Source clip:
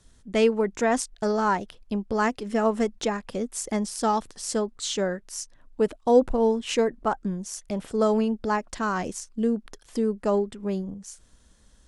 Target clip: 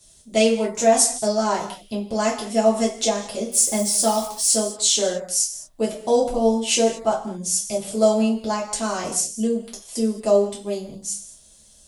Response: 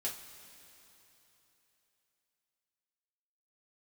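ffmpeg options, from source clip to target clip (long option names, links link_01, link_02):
-filter_complex "[0:a]equalizer=frequency=160:width_type=o:width=0.67:gain=7,equalizer=frequency=630:width_type=o:width=0.67:gain=9,equalizer=frequency=1600:width_type=o:width=0.67:gain=-8,asettb=1/sr,asplit=3[link_01][link_02][link_03];[link_01]atrim=end=3.474[link_04];[link_02]atrim=start=3.47:end=4.51,asetpts=PTS-STARTPTS,afade=type=in:duration=0.004:curve=qsin,afade=type=out:start_time=1.036:duration=0.004:curve=qsin,acrusher=bits=7:mix=0:aa=0.5[link_05];[link_03]atrim=start=4.506[link_06];[link_04][link_05]acrossfade=duration=0.004:curve1=hsin:curve2=qsin[link_07];[link_07][link_06]acrossfade=duration=0.004:curve1=qsin:curve2=hsin,crystalizer=i=7:c=0[link_08];[1:a]atrim=start_sample=2205,afade=type=out:start_time=0.27:duration=0.01,atrim=end_sample=12348,asetrate=41013,aresample=44100[link_09];[link_08][link_09]afir=irnorm=-1:irlink=0,volume=-4dB"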